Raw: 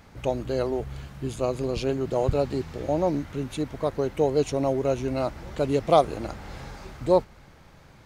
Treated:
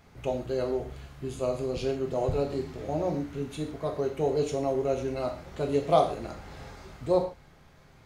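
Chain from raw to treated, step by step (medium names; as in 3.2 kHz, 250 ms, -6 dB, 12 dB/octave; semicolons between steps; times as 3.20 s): gated-style reverb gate 170 ms falling, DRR 1.5 dB; trim -6.5 dB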